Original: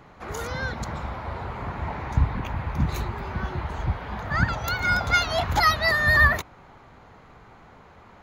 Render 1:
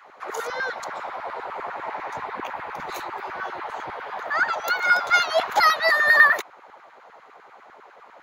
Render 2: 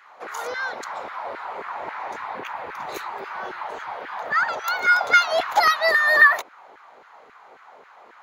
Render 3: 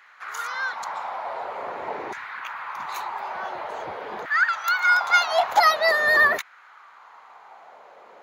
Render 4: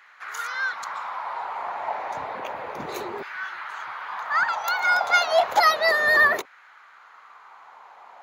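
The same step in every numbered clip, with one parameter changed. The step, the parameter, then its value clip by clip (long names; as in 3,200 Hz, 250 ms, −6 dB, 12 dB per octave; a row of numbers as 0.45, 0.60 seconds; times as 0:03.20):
auto-filter high-pass, speed: 10, 3.7, 0.47, 0.31 Hertz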